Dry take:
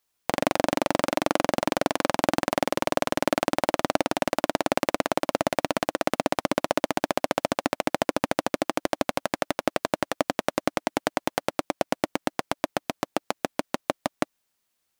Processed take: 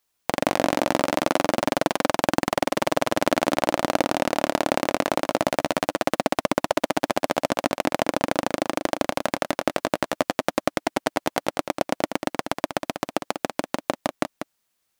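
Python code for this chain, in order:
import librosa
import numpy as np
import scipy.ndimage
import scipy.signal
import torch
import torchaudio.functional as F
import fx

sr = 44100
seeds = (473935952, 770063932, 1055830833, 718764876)

y = x + 10.0 ** (-8.5 / 20.0) * np.pad(x, (int(192 * sr / 1000.0), 0))[:len(x)]
y = F.gain(torch.from_numpy(y), 1.5).numpy()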